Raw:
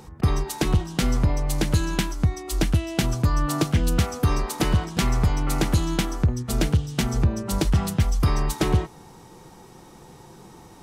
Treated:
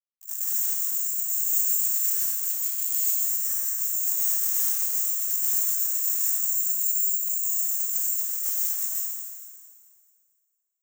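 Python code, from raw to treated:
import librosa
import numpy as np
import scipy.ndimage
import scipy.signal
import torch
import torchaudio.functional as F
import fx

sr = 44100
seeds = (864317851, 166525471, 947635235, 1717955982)

y = fx.noise_vocoder(x, sr, seeds[0], bands=6)
y = np.sign(y) * np.maximum(np.abs(y) - 10.0 ** (-35.5 / 20.0), 0.0)
y = fx.over_compress(y, sr, threshold_db=-37.0, ratio=-1.0)
y = (np.kron(scipy.signal.resample_poly(y, 1, 6), np.eye(6)[0]) * 6)[:len(y)]
y = np.diff(y, prepend=0.0)
y = fx.echo_alternate(y, sr, ms=111, hz=2200.0, feedback_pct=68, wet_db=-8.0)
y = fx.rev_plate(y, sr, seeds[1], rt60_s=1.6, hf_ratio=0.8, predelay_ms=115, drr_db=-7.5)
y = y * 10.0 ** (-9.0 / 20.0)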